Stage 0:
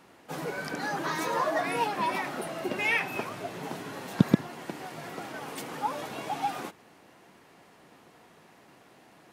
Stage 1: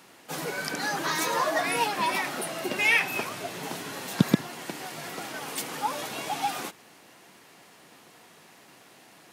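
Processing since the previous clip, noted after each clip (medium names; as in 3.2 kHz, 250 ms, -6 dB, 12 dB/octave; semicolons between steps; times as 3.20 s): high-pass 87 Hz; treble shelf 2.3 kHz +10.5 dB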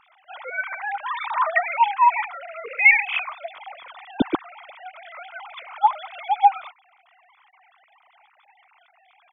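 formants replaced by sine waves; comb 0.9 ms, depth 56%; trim +4.5 dB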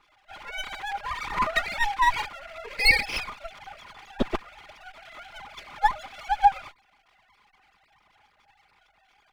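comb filter that takes the minimum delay 4.9 ms; trim -3 dB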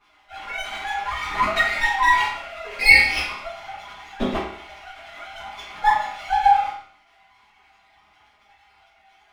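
reverberation, pre-delay 6 ms, DRR -11 dB; trim -5.5 dB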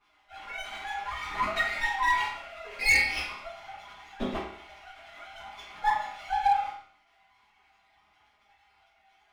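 hard clipper -9 dBFS, distortion -16 dB; trim -8 dB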